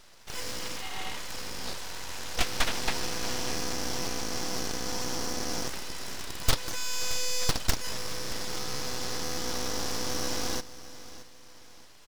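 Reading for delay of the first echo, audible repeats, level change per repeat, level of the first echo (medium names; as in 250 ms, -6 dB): 623 ms, 2, -8.5 dB, -16.0 dB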